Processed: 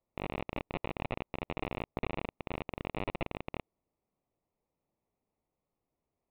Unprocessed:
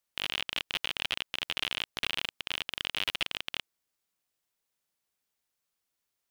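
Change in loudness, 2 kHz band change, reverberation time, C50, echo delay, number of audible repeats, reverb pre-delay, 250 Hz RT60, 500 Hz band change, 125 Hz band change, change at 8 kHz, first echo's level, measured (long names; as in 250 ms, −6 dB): −7.0 dB, −9.5 dB, no reverb audible, no reverb audible, no echo audible, no echo audible, no reverb audible, no reverb audible, +9.0 dB, +11.5 dB, below −30 dB, no echo audible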